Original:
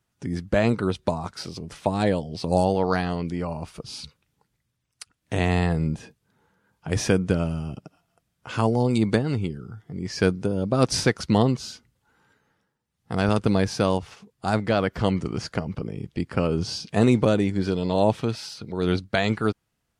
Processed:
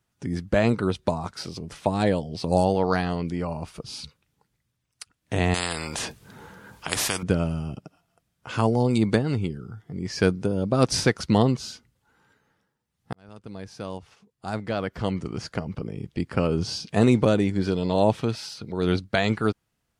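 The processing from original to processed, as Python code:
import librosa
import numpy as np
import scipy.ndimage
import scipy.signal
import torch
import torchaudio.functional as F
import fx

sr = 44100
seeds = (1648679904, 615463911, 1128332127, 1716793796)

y = fx.spectral_comp(x, sr, ratio=4.0, at=(5.54, 7.23))
y = fx.edit(y, sr, fx.fade_in_span(start_s=13.13, length_s=3.16), tone=tone)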